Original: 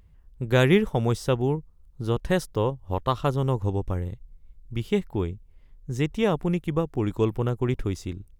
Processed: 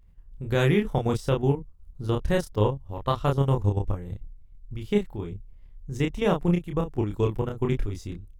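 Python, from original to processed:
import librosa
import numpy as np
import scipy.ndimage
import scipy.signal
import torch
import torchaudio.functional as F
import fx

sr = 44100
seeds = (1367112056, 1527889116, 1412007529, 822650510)

y = fx.low_shelf(x, sr, hz=64.0, db=9.5)
y = fx.level_steps(y, sr, step_db=11)
y = fx.doubler(y, sr, ms=29.0, db=-3)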